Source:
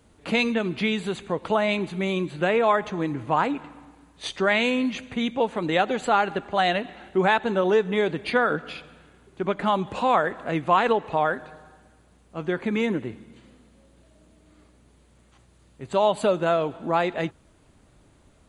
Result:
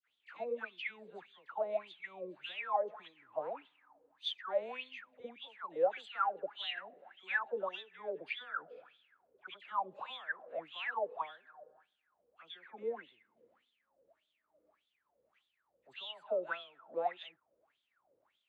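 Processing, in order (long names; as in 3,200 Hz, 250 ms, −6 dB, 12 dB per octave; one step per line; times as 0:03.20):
LFO wah 1.7 Hz 480–3,500 Hz, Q 14
all-pass dispersion lows, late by 80 ms, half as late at 1,400 Hz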